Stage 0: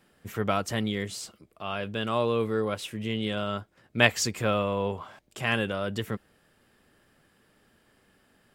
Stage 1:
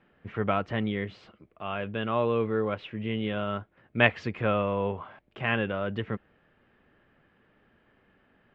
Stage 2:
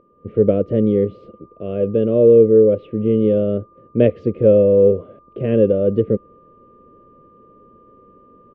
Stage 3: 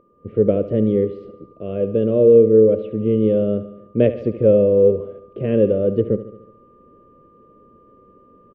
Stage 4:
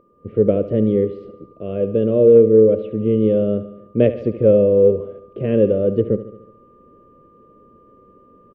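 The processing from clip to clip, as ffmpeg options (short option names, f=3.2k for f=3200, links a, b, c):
-af "lowpass=f=2.8k:w=0.5412,lowpass=f=2.8k:w=1.3066"
-af "aeval=exprs='val(0)+0.02*sin(2*PI*1200*n/s)':c=same,firequalizer=gain_entry='entry(120,0);entry(520,10);entry(810,-28);entry(2900,-19);entry(5500,-23)':delay=0.05:min_phase=1,dynaudnorm=f=160:g=3:m=9.5dB,volume=1.5dB"
-af "aecho=1:1:73|146|219|292|365|438:0.2|0.114|0.0648|0.037|0.0211|0.012,volume=-1.5dB"
-af "aeval=exprs='0.794*(cos(1*acos(clip(val(0)/0.794,-1,1)))-cos(1*PI/2))+0.0178*(cos(3*acos(clip(val(0)/0.794,-1,1)))-cos(3*PI/2))+0.00501*(cos(5*acos(clip(val(0)/0.794,-1,1)))-cos(5*PI/2))':c=same,volume=1dB"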